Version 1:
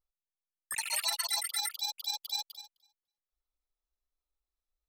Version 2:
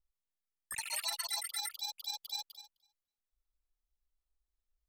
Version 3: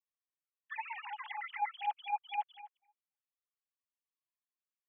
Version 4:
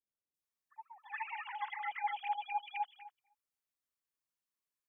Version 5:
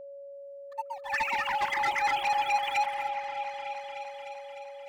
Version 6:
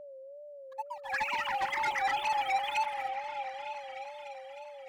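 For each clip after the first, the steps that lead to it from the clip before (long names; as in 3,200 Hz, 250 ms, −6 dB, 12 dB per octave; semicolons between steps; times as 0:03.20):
low-shelf EQ 160 Hz +11.5 dB; level −5 dB
three sine waves on the formant tracks; level +1 dB
three-band delay without the direct sound lows, highs, mids 340/420 ms, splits 710/3,200 Hz; level +2 dB
leveller curve on the samples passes 3; echo whose low-pass opens from repeat to repeat 302 ms, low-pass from 750 Hz, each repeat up 1 octave, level −6 dB; steady tone 560 Hz −46 dBFS; level +4.5 dB
tape wow and flutter 93 cents; level −3 dB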